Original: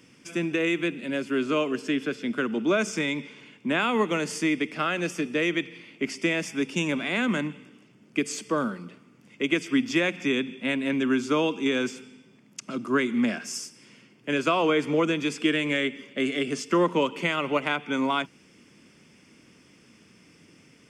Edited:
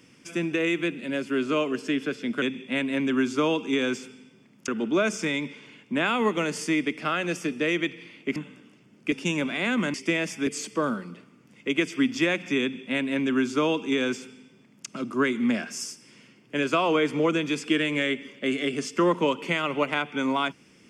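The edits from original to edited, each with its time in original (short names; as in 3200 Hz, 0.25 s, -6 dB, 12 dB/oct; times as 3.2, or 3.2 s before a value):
6.1–6.63 swap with 7.45–8.21
10.35–12.61 copy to 2.42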